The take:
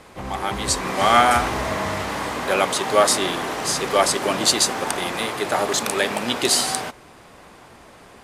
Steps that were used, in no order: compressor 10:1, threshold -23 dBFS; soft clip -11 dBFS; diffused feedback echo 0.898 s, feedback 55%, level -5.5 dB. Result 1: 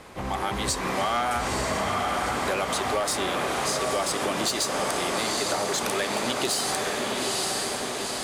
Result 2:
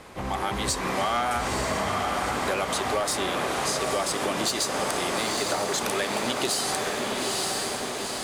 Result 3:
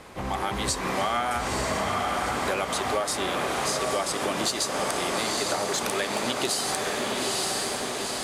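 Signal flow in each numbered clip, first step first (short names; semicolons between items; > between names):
diffused feedback echo > soft clip > compressor; soft clip > diffused feedback echo > compressor; diffused feedback echo > compressor > soft clip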